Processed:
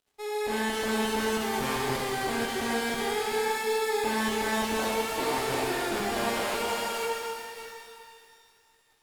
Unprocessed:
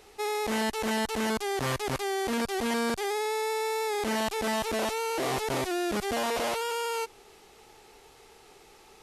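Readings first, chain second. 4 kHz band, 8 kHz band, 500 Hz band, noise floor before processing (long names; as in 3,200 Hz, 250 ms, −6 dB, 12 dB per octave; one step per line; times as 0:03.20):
+1.5 dB, +1.0 dB, +0.5 dB, −55 dBFS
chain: delay that plays each chunk backwards 348 ms, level −8.5 dB
notch filter 6,000 Hz, Q 8.6
dead-zone distortion −49 dBFS
automatic gain control gain up to 4.5 dB
reverb with rising layers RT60 2.2 s, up +12 semitones, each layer −8 dB, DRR −2 dB
level −7.5 dB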